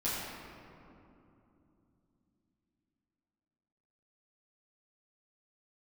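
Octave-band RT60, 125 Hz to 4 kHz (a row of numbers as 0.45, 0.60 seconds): 4.4, 4.5, 3.2, 2.7, 2.0, 1.3 seconds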